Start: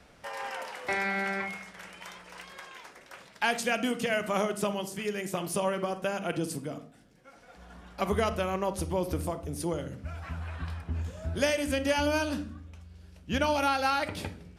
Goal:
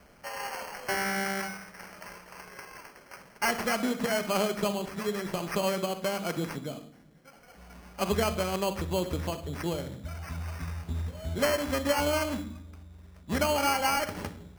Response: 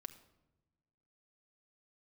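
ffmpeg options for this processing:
-filter_complex "[0:a]acrusher=samples=12:mix=1:aa=0.000001,asplit=2[s0][s1];[1:a]atrim=start_sample=2205[s2];[s1][s2]afir=irnorm=-1:irlink=0,volume=1.88[s3];[s0][s3]amix=inputs=2:normalize=0,volume=0.501"

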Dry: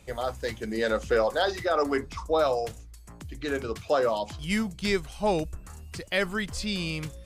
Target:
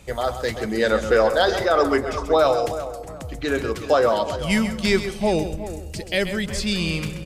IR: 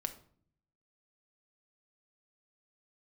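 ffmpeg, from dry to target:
-filter_complex "[0:a]asettb=1/sr,asplit=3[s0][s1][s2];[s0]atrim=end=5.124[s3];[s1]atrim=start=5.12:end=6.45,asetpts=PTS-STARTPTS,afade=t=in:d=0.004:c=qsin,afade=t=out:st=1.326:d=0.004:c=qsin,equalizer=f=1200:t=o:w=0.95:g=-12.5[s4];[s2]atrim=start=6.446[s5];[s3][s4]acrossfade=d=0.004:c1=hsin:c2=qsin[s6];[s6][s5]acrossfade=d=0.004:c1=qsin:c2=hsin,asplit=2[s7][s8];[s8]adelay=366,lowpass=f=1700:p=1,volume=0.251,asplit=2[s9][s10];[s10]adelay=366,lowpass=f=1700:p=1,volume=0.35,asplit=2[s11][s12];[s12]adelay=366,lowpass=f=1700:p=1,volume=0.35,asplit=2[s13][s14];[s14]adelay=366,lowpass=f=1700:p=1,volume=0.35[s15];[s7][s9][s11][s13][s15]amix=inputs=5:normalize=0,asplit=2[s16][s17];[1:a]atrim=start_sample=2205,adelay=130[s18];[s17][s18]afir=irnorm=-1:irlink=0,volume=0.316[s19];[s16][s19]amix=inputs=2:normalize=0,volume=2.11"

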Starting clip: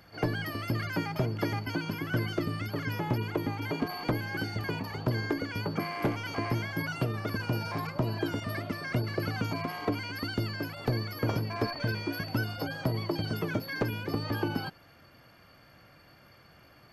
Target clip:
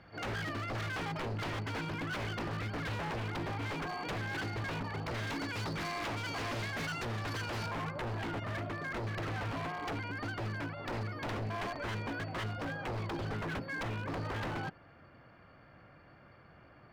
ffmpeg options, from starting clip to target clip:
-af "asetnsamples=n=441:p=0,asendcmd='5.27 lowpass f 6200;7.66 lowpass f 2000',lowpass=2900,aeval=exprs='0.0251*(abs(mod(val(0)/0.0251+3,4)-2)-1)':c=same"

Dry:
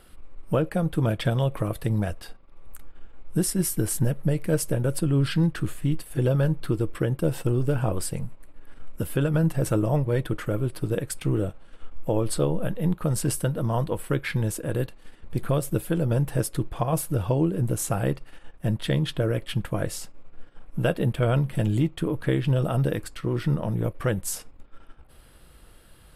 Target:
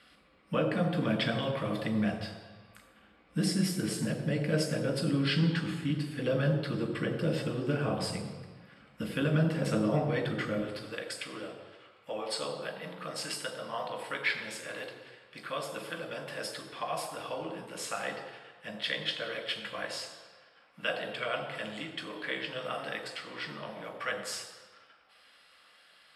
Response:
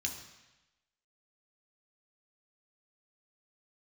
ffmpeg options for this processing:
-filter_complex "[0:a]asetnsamples=n=441:p=0,asendcmd='10.59 highpass f 670',highpass=220,lowpass=6500[s0];[1:a]atrim=start_sample=2205,asetrate=32634,aresample=44100[s1];[s0][s1]afir=irnorm=-1:irlink=0,volume=0.631"

